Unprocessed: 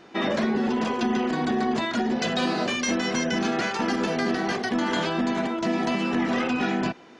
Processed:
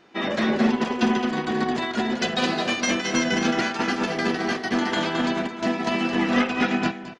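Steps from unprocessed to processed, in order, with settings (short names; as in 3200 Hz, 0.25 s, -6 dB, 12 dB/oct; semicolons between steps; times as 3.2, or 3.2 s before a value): bell 2500 Hz +3 dB 2 oct; echo 0.218 s -5.5 dB; upward expander 2.5:1, over -27 dBFS; gain +4 dB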